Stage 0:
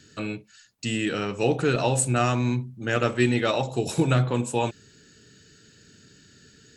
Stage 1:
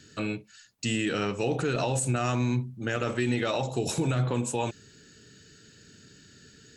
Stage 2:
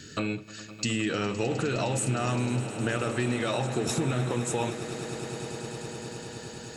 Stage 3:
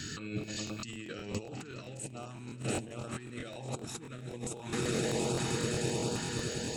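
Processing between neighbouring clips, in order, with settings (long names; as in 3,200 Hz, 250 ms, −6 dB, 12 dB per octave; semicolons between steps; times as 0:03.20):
dynamic equaliser 6,400 Hz, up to +4 dB, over −53 dBFS, Q 3.7; brickwall limiter −18 dBFS, peak gain reduction 9.5 dB
downward compressor 2.5 to 1, threshold −38 dBFS, peak gain reduction 10.5 dB; echo that builds up and dies away 103 ms, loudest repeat 8, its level −17.5 dB; level +8 dB
compressor whose output falls as the input rises −35 dBFS, ratio −0.5; auto-filter notch saw up 1.3 Hz 450–2,100 Hz; regular buffer underruns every 0.13 s, samples 1,024, repeat, from 0:00.39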